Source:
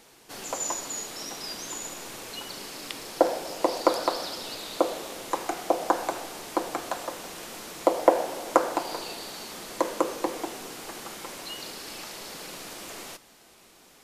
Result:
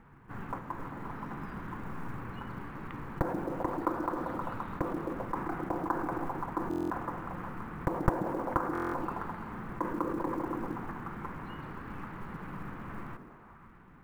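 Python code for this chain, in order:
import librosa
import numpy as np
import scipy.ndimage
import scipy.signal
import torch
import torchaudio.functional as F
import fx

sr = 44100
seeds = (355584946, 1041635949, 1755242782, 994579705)

p1 = np.minimum(x, 2.0 * 10.0 ** (-10.5 / 20.0) - x)
p2 = fx.curve_eq(p1, sr, hz=(140.0, 350.0, 630.0, 1000.0), db=(0, -17, -24, -11))
p3 = p2 + fx.echo_stepped(p2, sr, ms=131, hz=250.0, octaves=0.7, feedback_pct=70, wet_db=-2.5, dry=0)
p4 = fx.dynamic_eq(p3, sr, hz=310.0, q=1.8, threshold_db=-55.0, ratio=4.0, max_db=4)
p5 = fx.over_compress(p4, sr, threshold_db=-46.0, ratio=-1.0)
p6 = p4 + (p5 * librosa.db_to_amplitude(2.0))
p7 = scipy.signal.sosfilt(scipy.signal.butter(4, 1600.0, 'lowpass', fs=sr, output='sos'), p6)
p8 = fx.quant_float(p7, sr, bits=4)
p9 = fx.buffer_glitch(p8, sr, at_s=(6.69, 8.73), block=1024, repeats=8)
y = p9 * librosa.db_to_amplitude(4.5)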